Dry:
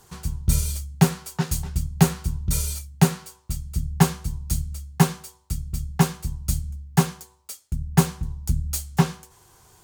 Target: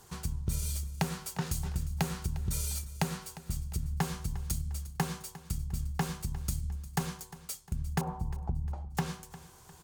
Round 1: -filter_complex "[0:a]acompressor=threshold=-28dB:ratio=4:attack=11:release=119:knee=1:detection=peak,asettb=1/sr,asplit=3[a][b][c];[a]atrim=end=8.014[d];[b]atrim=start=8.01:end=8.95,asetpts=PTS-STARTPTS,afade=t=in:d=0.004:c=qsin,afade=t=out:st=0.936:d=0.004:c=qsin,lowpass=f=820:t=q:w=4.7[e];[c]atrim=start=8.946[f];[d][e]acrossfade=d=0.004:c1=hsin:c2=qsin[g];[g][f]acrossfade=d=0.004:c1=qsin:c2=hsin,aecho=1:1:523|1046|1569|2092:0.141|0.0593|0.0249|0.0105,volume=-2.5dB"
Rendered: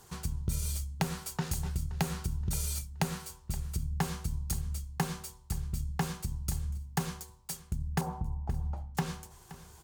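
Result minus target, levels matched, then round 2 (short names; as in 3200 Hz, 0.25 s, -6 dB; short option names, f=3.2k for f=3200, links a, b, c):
echo 0.17 s late
-filter_complex "[0:a]acompressor=threshold=-28dB:ratio=4:attack=11:release=119:knee=1:detection=peak,asettb=1/sr,asplit=3[a][b][c];[a]atrim=end=8.014[d];[b]atrim=start=8.01:end=8.95,asetpts=PTS-STARTPTS,afade=t=in:d=0.004:c=qsin,afade=t=out:st=0.936:d=0.004:c=qsin,lowpass=f=820:t=q:w=4.7[e];[c]atrim=start=8.946[f];[d][e]acrossfade=d=0.004:c1=hsin:c2=qsin[g];[g][f]acrossfade=d=0.004:c1=qsin:c2=hsin,aecho=1:1:353|706|1059|1412:0.141|0.0593|0.0249|0.0105,volume=-2.5dB"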